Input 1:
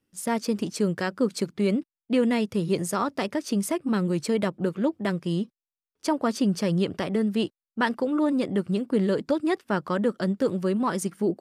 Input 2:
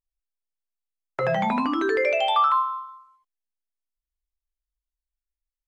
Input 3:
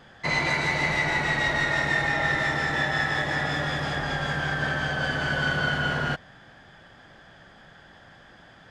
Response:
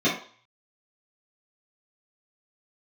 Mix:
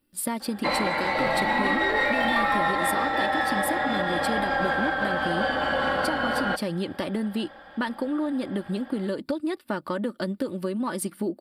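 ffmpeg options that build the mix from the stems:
-filter_complex "[0:a]aecho=1:1:3.4:0.44,acompressor=threshold=-27dB:ratio=6,volume=2dB[a];[1:a]acompressor=threshold=-29dB:ratio=6,aeval=exprs='clip(val(0),-1,0.0282)':c=same,volume=2.5dB[b];[2:a]equalizer=f=720:w=0.5:g=11.5,aecho=1:1:3.7:0.79,adelay=400,volume=-6dB[c];[a][c]amix=inputs=2:normalize=0,alimiter=limit=-14.5dB:level=0:latency=1:release=236,volume=0dB[d];[b][d]amix=inputs=2:normalize=0,bandreject=f=5.3k:w=24,aexciter=amount=1.3:drive=0.9:freq=3.5k"

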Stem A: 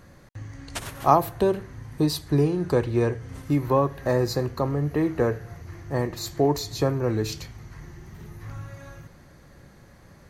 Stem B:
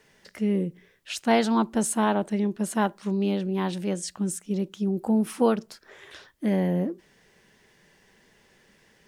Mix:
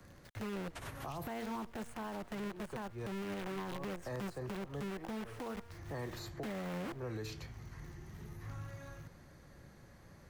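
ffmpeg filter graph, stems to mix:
-filter_complex "[0:a]acrossover=split=180|3000[a][b][c];[b]acompressor=threshold=-23dB:ratio=6[d];[a][d][c]amix=inputs=3:normalize=0,volume=-7dB[e];[1:a]aemphasis=mode=reproduction:type=75kf,bandreject=f=235.1:t=h:w=4,bandreject=f=470.2:t=h:w=4,bandreject=f=705.3:t=h:w=4,bandreject=f=940.4:t=h:w=4,bandreject=f=1.1755k:t=h:w=4,bandreject=f=1.4106k:t=h:w=4,bandreject=f=1.6457k:t=h:w=4,bandreject=f=1.8808k:t=h:w=4,bandreject=f=2.1159k:t=h:w=4,bandreject=f=2.351k:t=h:w=4,bandreject=f=2.5861k:t=h:w=4,bandreject=f=2.8212k:t=h:w=4,bandreject=f=3.0563k:t=h:w=4,bandreject=f=3.2914k:t=h:w=4,bandreject=f=3.5265k:t=h:w=4,bandreject=f=3.7616k:t=h:w=4,bandreject=f=3.9967k:t=h:w=4,bandreject=f=4.2318k:t=h:w=4,bandreject=f=4.4669k:t=h:w=4,bandreject=f=4.702k:t=h:w=4,bandreject=f=4.9371k:t=h:w=4,bandreject=f=5.1722k:t=h:w=4,bandreject=f=5.4073k:t=h:w=4,bandreject=f=5.6424k:t=h:w=4,bandreject=f=5.8775k:t=h:w=4,bandreject=f=6.1126k:t=h:w=4,bandreject=f=6.3477k:t=h:w=4,bandreject=f=6.5828k:t=h:w=4,bandreject=f=6.8179k:t=h:w=4,bandreject=f=7.053k:t=h:w=4,acrusher=bits=6:dc=4:mix=0:aa=0.000001,volume=-3.5dB,asplit=2[f][g];[g]apad=whole_len=453793[h];[e][h]sidechaincompress=threshold=-45dB:ratio=8:attack=26:release=150[i];[i][f]amix=inputs=2:normalize=0,acrossover=split=120|380|980|2800[j][k][l][m][n];[j]acompressor=threshold=-45dB:ratio=4[o];[k]acompressor=threshold=-45dB:ratio=4[p];[l]acompressor=threshold=-41dB:ratio=4[q];[m]acompressor=threshold=-42dB:ratio=4[r];[n]acompressor=threshold=-54dB:ratio=4[s];[o][p][q][r][s]amix=inputs=5:normalize=0,alimiter=level_in=9dB:limit=-24dB:level=0:latency=1:release=57,volume=-9dB"

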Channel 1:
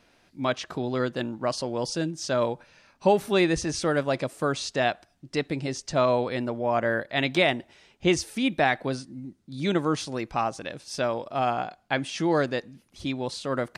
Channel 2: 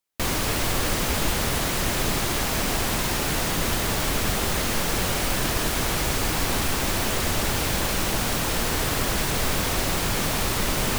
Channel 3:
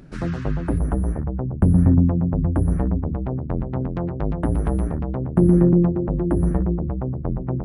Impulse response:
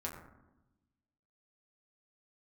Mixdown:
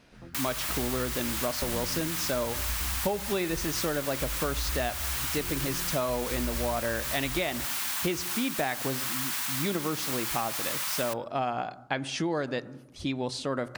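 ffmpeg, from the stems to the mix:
-filter_complex "[0:a]volume=0dB,asplit=2[a][b];[b]volume=-14.5dB[c];[1:a]highpass=f=940:w=0.5412,highpass=f=940:w=1.3066,highshelf=f=10k:g=8,adelay=150,volume=-6.5dB,asplit=2[d][e];[e]volume=-19.5dB[f];[2:a]asubboost=boost=10.5:cutoff=61,flanger=delay=15:depth=2.4:speed=0.37,volume=-18dB[g];[3:a]atrim=start_sample=2205[h];[c][f]amix=inputs=2:normalize=0[i];[i][h]afir=irnorm=-1:irlink=0[j];[a][d][g][j]amix=inputs=4:normalize=0,acompressor=threshold=-26dB:ratio=6"

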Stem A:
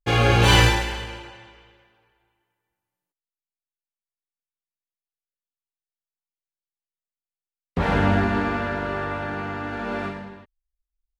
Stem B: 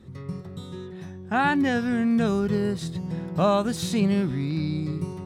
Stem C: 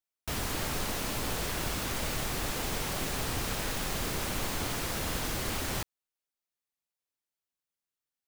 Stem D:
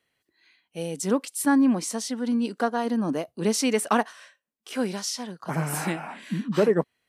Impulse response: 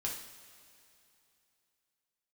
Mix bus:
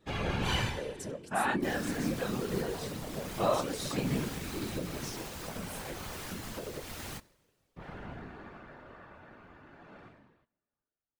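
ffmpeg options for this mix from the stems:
-filter_complex "[0:a]volume=-10.5dB,afade=t=out:st=0.59:d=0.48:silence=0.375837,asplit=2[a][b];[b]volume=-20.5dB[c];[1:a]flanger=delay=15.5:depth=7:speed=0.89,highpass=f=320:p=1,volume=2dB[d];[2:a]flanger=delay=17:depth=4.4:speed=1.9,adelay=1350,volume=3dB,asplit=2[e][f];[f]volume=-20.5dB[g];[3:a]equalizer=f=530:t=o:w=0.27:g=14,acompressor=threshold=-20dB:ratio=6,volume=-6dB,asplit=2[h][i];[i]volume=-20.5dB[j];[e][h]amix=inputs=2:normalize=0,acompressor=threshold=-32dB:ratio=6,volume=0dB[k];[4:a]atrim=start_sample=2205[l];[c][g][j]amix=inputs=3:normalize=0[m];[m][l]afir=irnorm=-1:irlink=0[n];[a][d][k][n]amix=inputs=4:normalize=0,afftfilt=real='hypot(re,im)*cos(2*PI*random(0))':imag='hypot(re,im)*sin(2*PI*random(1))':win_size=512:overlap=0.75"

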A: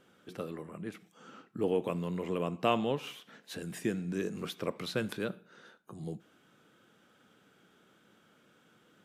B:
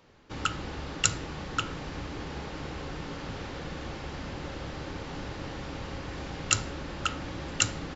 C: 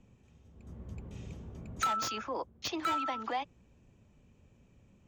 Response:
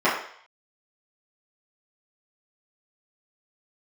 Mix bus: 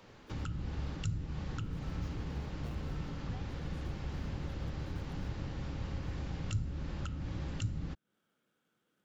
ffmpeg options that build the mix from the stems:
-filter_complex "[0:a]acrusher=bits=2:mode=log:mix=0:aa=0.000001,volume=-16dB,asplit=2[a][b];[1:a]volume=2.5dB[c];[2:a]volume=-5.5dB[d];[b]apad=whole_len=223837[e];[d][e]sidechaincompress=threshold=-53dB:ratio=8:attack=16:release=550[f];[a][c][f]amix=inputs=3:normalize=0,acrossover=split=200[g][h];[h]acompressor=threshold=-48dB:ratio=6[i];[g][i]amix=inputs=2:normalize=0"

